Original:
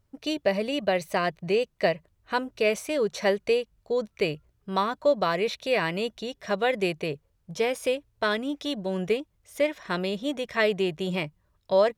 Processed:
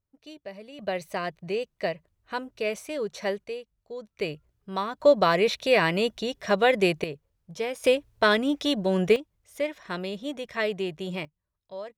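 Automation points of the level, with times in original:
−16 dB
from 0:00.79 −5 dB
from 0:03.44 −11.5 dB
from 0:04.18 −4 dB
from 0:05.00 +4 dB
from 0:07.04 −4.5 dB
from 0:07.84 +5 dB
from 0:09.16 −4 dB
from 0:11.25 −17 dB

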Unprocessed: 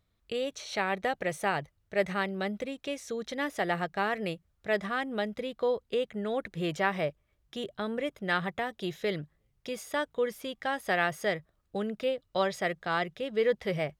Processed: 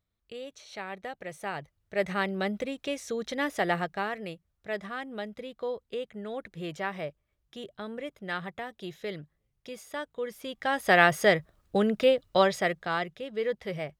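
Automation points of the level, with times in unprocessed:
0:01.24 −8.5 dB
0:02.28 +2.5 dB
0:03.73 +2.5 dB
0:04.23 −5 dB
0:10.21 −5 dB
0:10.97 +8 dB
0:12.23 +8 dB
0:13.25 −3.5 dB

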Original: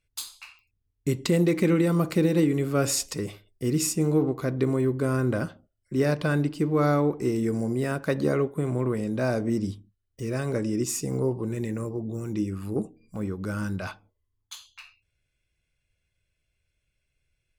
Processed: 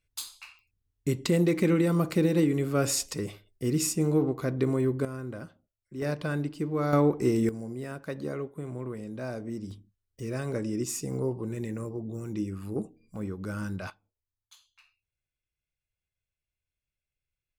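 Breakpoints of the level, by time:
−2 dB
from 0:05.05 −12.5 dB
from 0:06.02 −6 dB
from 0:06.93 +1 dB
from 0:07.49 −10 dB
from 0:09.71 −4 dB
from 0:13.90 −14.5 dB

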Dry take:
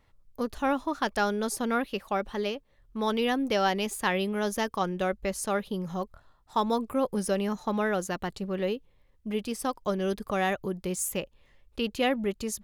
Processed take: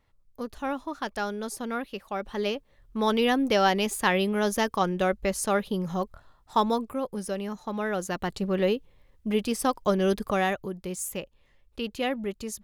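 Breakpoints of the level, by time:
0:02.12 −4 dB
0:02.52 +3.5 dB
0:06.60 +3.5 dB
0:07.01 −4 dB
0:07.69 −4 dB
0:08.44 +5 dB
0:10.22 +5 dB
0:10.71 −2.5 dB

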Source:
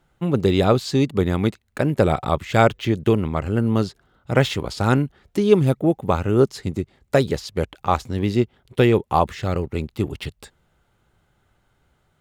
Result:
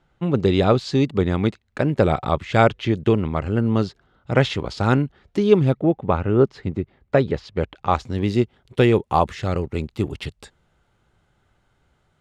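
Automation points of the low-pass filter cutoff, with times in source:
0:05.45 5,400 Hz
0:06.16 2,600 Hz
0:07.32 2,600 Hz
0:07.96 5,200 Hz
0:08.30 8,800 Hz

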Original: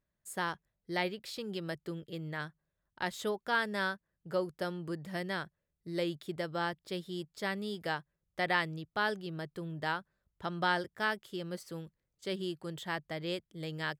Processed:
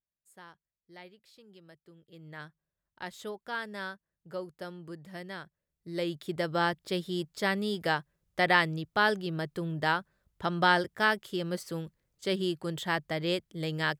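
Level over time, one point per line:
0:01.94 −16.5 dB
0:02.38 −5 dB
0:05.43 −5 dB
0:06.52 +6.5 dB

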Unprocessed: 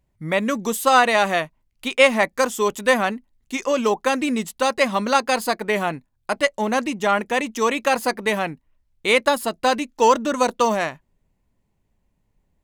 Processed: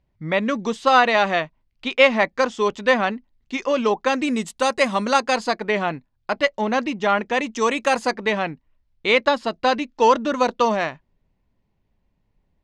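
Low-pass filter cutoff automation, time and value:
low-pass filter 24 dB per octave
0:03.97 5,200 Hz
0:04.47 9,400 Hz
0:05.02 9,400 Hz
0:05.71 5,300 Hz
0:07.22 5,300 Hz
0:07.90 9,400 Hz
0:08.24 5,300 Hz

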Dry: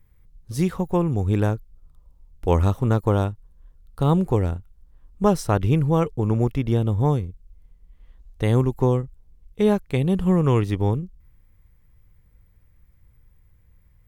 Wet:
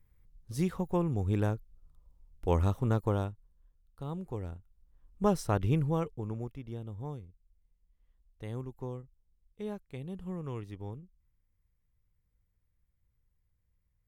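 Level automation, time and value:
0:02.99 −8.5 dB
0:04.10 −20 dB
0:05.27 −8.5 dB
0:05.79 −8.5 dB
0:06.59 −20 dB

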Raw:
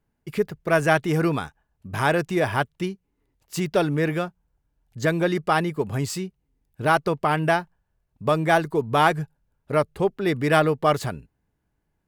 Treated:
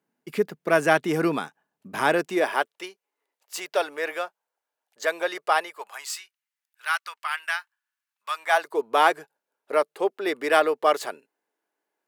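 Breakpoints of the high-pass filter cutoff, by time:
high-pass filter 24 dB per octave
0:02.07 200 Hz
0:02.91 520 Hz
0:05.57 520 Hz
0:06.24 1,300 Hz
0:08.27 1,300 Hz
0:08.80 370 Hz

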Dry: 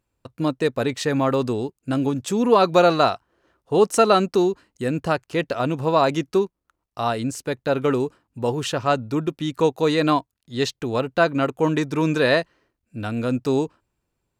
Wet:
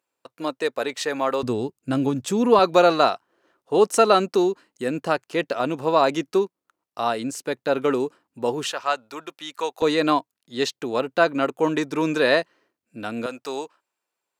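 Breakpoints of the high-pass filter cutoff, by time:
450 Hz
from 0:01.43 110 Hz
from 0:02.59 240 Hz
from 0:08.72 780 Hz
from 0:09.82 250 Hz
from 0:13.26 660 Hz

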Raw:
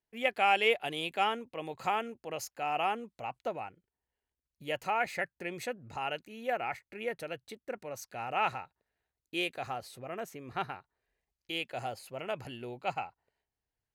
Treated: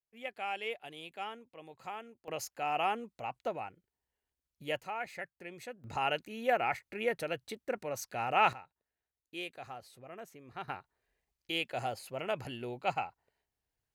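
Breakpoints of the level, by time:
−11.5 dB
from 0:02.28 −0.5 dB
from 0:04.80 −8 dB
from 0:05.84 +3.5 dB
from 0:08.53 −8 dB
from 0:10.68 +1.5 dB

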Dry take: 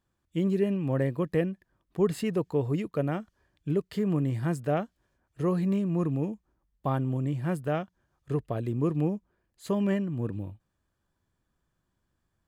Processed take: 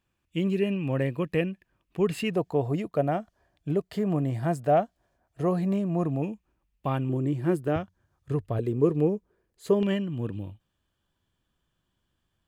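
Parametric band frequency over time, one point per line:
parametric band +12 dB 0.46 octaves
2,600 Hz
from 0:02.34 690 Hz
from 0:06.22 2,600 Hz
from 0:07.09 350 Hz
from 0:07.76 94 Hz
from 0:08.59 430 Hz
from 0:09.83 3,100 Hz

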